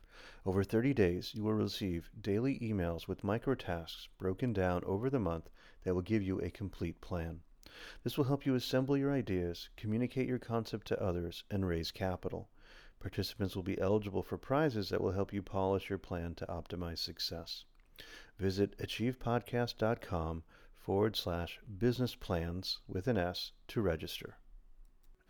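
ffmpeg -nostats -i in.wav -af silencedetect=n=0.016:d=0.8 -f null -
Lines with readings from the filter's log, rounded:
silence_start: 24.25
silence_end: 25.29 | silence_duration: 1.04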